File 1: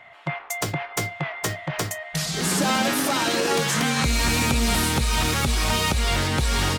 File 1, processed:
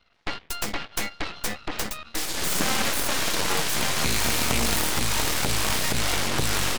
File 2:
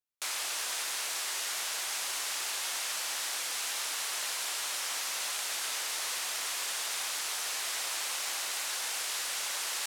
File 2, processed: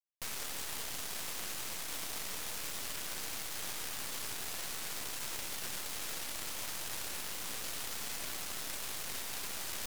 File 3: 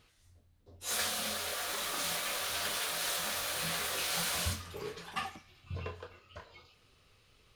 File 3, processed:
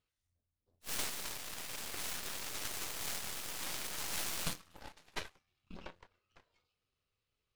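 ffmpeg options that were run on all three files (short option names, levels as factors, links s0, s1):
-af "aeval=exprs='if(lt(val(0),0),0.708*val(0),val(0))':c=same,aeval=exprs='0.266*(cos(1*acos(clip(val(0)/0.266,-1,1)))-cos(1*PI/2))+0.106*(cos(3*acos(clip(val(0)/0.266,-1,1)))-cos(3*PI/2))+0.0211*(cos(5*acos(clip(val(0)/0.266,-1,1)))-cos(5*PI/2))+0.00473*(cos(7*acos(clip(val(0)/0.266,-1,1)))-cos(7*PI/2))+0.0473*(cos(8*acos(clip(val(0)/0.266,-1,1)))-cos(8*PI/2))':c=same,volume=1.33"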